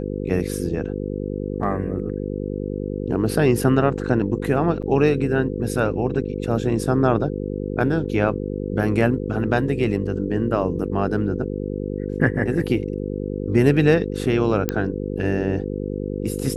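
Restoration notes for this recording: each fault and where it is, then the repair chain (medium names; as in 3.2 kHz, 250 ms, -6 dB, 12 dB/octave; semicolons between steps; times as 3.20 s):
buzz 50 Hz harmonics 10 -27 dBFS
4.82–4.83 s: dropout 6.4 ms
14.69 s: pop -6 dBFS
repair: de-click; de-hum 50 Hz, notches 10; interpolate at 4.82 s, 6.4 ms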